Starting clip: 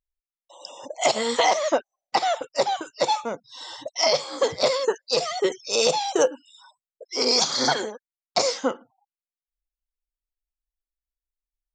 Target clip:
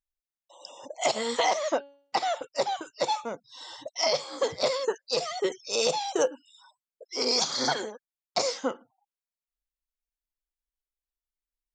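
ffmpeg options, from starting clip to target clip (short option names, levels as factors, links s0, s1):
-filter_complex "[0:a]asplit=3[s0][s1][s2];[s0]afade=t=out:st=1.69:d=0.02[s3];[s1]bandreject=f=281.6:t=h:w=4,bandreject=f=563.2:t=h:w=4,bandreject=f=844.8:t=h:w=4,bandreject=f=1126.4:t=h:w=4,bandreject=f=1408:t=h:w=4,bandreject=f=1689.6:t=h:w=4,bandreject=f=1971.2:t=h:w=4,bandreject=f=2252.8:t=h:w=4,bandreject=f=2534.4:t=h:w=4,bandreject=f=2816:t=h:w=4,bandreject=f=3097.6:t=h:w=4,bandreject=f=3379.2:t=h:w=4,bandreject=f=3660.8:t=h:w=4,bandreject=f=3942.4:t=h:w=4,bandreject=f=4224:t=h:w=4,bandreject=f=4505.6:t=h:w=4,afade=t=in:st=1.69:d=0.02,afade=t=out:st=2.4:d=0.02[s4];[s2]afade=t=in:st=2.4:d=0.02[s5];[s3][s4][s5]amix=inputs=3:normalize=0,volume=0.562"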